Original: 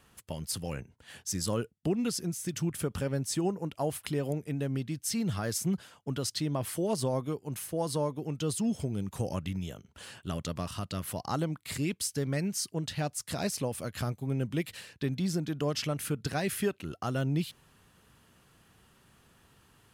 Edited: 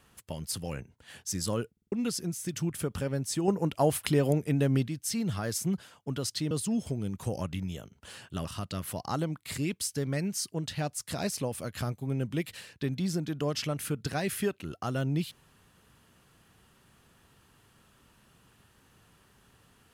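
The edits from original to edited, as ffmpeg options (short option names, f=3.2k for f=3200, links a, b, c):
-filter_complex "[0:a]asplit=9[a][b][c][d][e][f][g][h][i];[a]atrim=end=1.772[j];[b]atrim=start=1.718:end=1.772[k];[c]atrim=start=1.718:end=1.772[l];[d]atrim=start=1.718:end=1.772[m];[e]atrim=start=1.918:end=3.482[n];[f]atrim=start=3.478:end=4.882,asetpts=PTS-STARTPTS,volume=6.5dB[o];[g]atrim=start=4.878:end=6.512[p];[h]atrim=start=8.438:end=10.382[q];[i]atrim=start=10.648[r];[j][k]acrossfade=d=0.004:c1=hsin:c2=hsin[s];[s][l]acrossfade=d=0.004:c1=hsin:c2=hsin[t];[t][m]acrossfade=d=0.004:c1=hsin:c2=hsin[u];[u][n]acrossfade=d=0.004:c1=hsin:c2=hsin[v];[v][o]acrossfade=d=0.004:c1=hsin:c2=hsin[w];[w][p]acrossfade=d=0.004:c1=hsin:c2=hsin[x];[x][q]acrossfade=d=0.004:c1=hsin:c2=hsin[y];[y][r]acrossfade=d=0.004:c1=hsin:c2=hsin"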